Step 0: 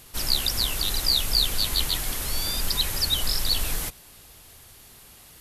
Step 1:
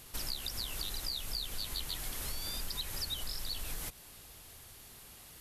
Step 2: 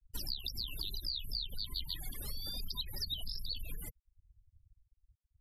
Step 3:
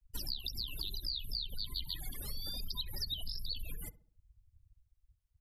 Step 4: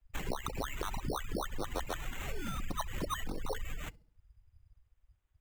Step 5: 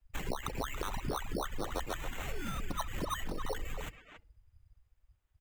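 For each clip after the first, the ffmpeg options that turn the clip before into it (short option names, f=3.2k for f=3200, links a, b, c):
-af "acompressor=threshold=-31dB:ratio=6,volume=-4dB"
-af "aeval=exprs='0.0668*(cos(1*acos(clip(val(0)/0.0668,-1,1)))-cos(1*PI/2))+0.00299*(cos(3*acos(clip(val(0)/0.0668,-1,1)))-cos(3*PI/2))':c=same,afftfilt=real='re*gte(hypot(re,im),0.01)':imag='im*gte(hypot(re,im),0.01)':win_size=1024:overlap=0.75,volume=1dB"
-filter_complex "[0:a]asplit=2[a][b];[b]adelay=67,lowpass=f=1.2k:p=1,volume=-15.5dB,asplit=2[c][d];[d]adelay=67,lowpass=f=1.2k:p=1,volume=0.48,asplit=2[e][f];[f]adelay=67,lowpass=f=1.2k:p=1,volume=0.48,asplit=2[g][h];[h]adelay=67,lowpass=f=1.2k:p=1,volume=0.48[i];[a][c][e][g][i]amix=inputs=5:normalize=0"
-af "acrusher=samples=9:mix=1:aa=0.000001,volume=2.5dB"
-filter_complex "[0:a]asplit=2[a][b];[b]adelay=280,highpass=300,lowpass=3.4k,asoftclip=type=hard:threshold=-31dB,volume=-7dB[c];[a][c]amix=inputs=2:normalize=0"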